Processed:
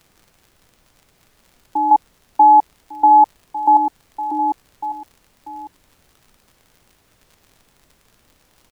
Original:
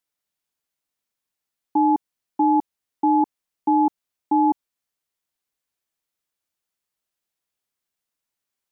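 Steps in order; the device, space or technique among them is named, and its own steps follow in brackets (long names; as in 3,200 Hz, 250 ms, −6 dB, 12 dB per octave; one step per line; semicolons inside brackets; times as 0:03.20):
high-pass filter 540 Hz 12 dB per octave
0:01.91–0:03.77: flat-topped bell 700 Hz +9.5 dB 1.2 octaves
vinyl LP (surface crackle 73 per second −41 dBFS; pink noise bed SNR 39 dB)
single-tap delay 1,151 ms −15 dB
level +3 dB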